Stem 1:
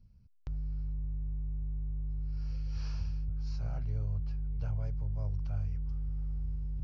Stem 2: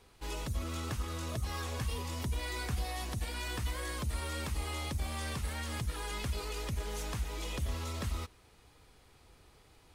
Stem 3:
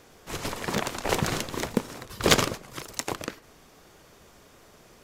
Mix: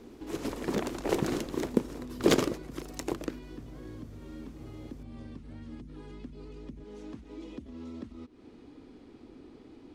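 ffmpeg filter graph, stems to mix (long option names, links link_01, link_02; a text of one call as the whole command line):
ffmpeg -i stem1.wav -i stem2.wav -i stem3.wav -filter_complex "[0:a]volume=-6.5dB[link_01];[1:a]lowpass=5200,acompressor=threshold=-46dB:ratio=3,volume=-1dB[link_02];[2:a]volume=-10dB[link_03];[link_01][link_02]amix=inputs=2:normalize=0,equalizer=frequency=250:width_type=o:width=0.81:gain=12.5,acompressor=threshold=-51dB:ratio=2.5,volume=0dB[link_04];[link_03][link_04]amix=inputs=2:normalize=0,equalizer=frequency=320:width_type=o:width=1.4:gain=14.5" out.wav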